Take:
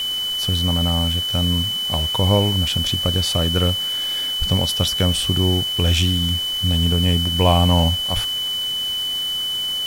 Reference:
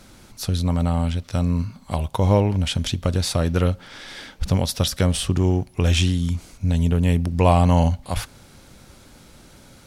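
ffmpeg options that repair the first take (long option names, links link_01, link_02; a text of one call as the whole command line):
ffmpeg -i in.wav -af "bandreject=frequency=3000:width=30,afwtdn=0.016" out.wav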